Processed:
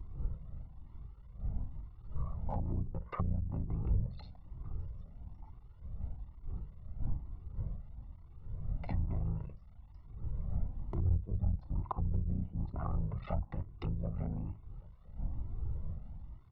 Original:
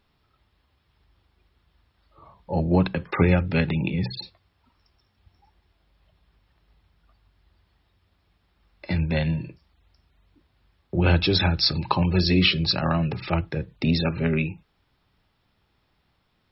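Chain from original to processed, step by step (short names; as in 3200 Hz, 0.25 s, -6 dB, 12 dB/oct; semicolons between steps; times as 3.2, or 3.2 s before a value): cycle switcher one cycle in 3, muted; wind noise 150 Hz -42 dBFS; treble ducked by the level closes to 310 Hz, closed at -18.5 dBFS; compressor 3:1, threshold -40 dBFS, peak gain reduction 18 dB; polynomial smoothing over 65 samples; bell 340 Hz -13.5 dB 2.6 oct; outdoor echo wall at 260 m, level -24 dB; cascading flanger rising 1.1 Hz; gain +13.5 dB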